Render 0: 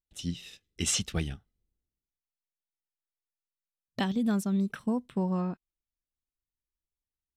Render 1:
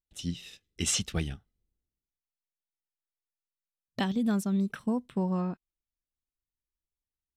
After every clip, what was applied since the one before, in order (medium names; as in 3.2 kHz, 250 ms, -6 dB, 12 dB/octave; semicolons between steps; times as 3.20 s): no audible change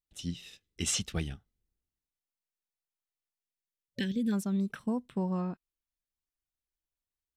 time-frequency box 3.41–4.32 s, 560–1500 Hz -23 dB; trim -2.5 dB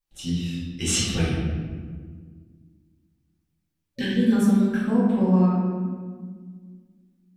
reverberation RT60 1.7 s, pre-delay 4 ms, DRR -10 dB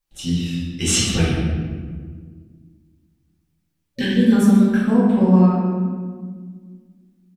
delay 135 ms -13.5 dB; trim +5 dB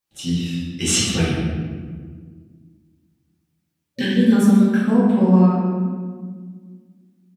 high-pass 97 Hz